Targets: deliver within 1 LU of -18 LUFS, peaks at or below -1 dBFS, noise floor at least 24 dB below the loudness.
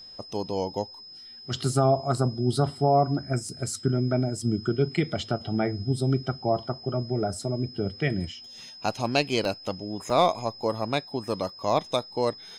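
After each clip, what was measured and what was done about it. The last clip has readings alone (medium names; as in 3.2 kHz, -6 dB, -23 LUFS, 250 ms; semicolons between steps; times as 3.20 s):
dropouts 3; longest dropout 1.7 ms; steady tone 5.1 kHz; tone level -43 dBFS; loudness -27.5 LUFS; peak level -8.5 dBFS; loudness target -18.0 LUFS
-> interpolate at 3.49/9.45/10.10 s, 1.7 ms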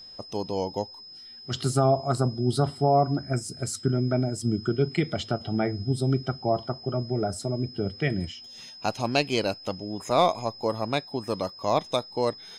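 dropouts 0; steady tone 5.1 kHz; tone level -43 dBFS
-> band-stop 5.1 kHz, Q 30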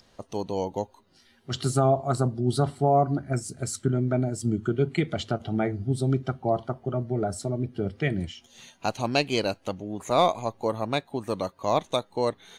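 steady tone not found; loudness -27.5 LUFS; peak level -9.0 dBFS; loudness target -18.0 LUFS
-> trim +9.5 dB; peak limiter -1 dBFS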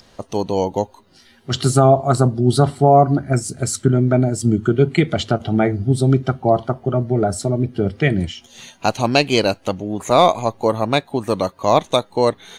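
loudness -18.0 LUFS; peak level -1.0 dBFS; noise floor -52 dBFS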